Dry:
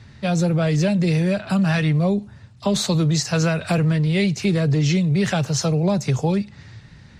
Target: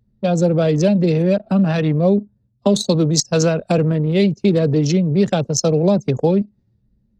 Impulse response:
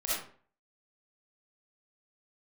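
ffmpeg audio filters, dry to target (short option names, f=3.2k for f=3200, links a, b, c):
-af "equalizer=f=250:t=o:w=1:g=11,equalizer=f=500:t=o:w=1:g=10,equalizer=f=2k:t=o:w=1:g=-7,anlmdn=6310,crystalizer=i=9:c=0,volume=-4.5dB"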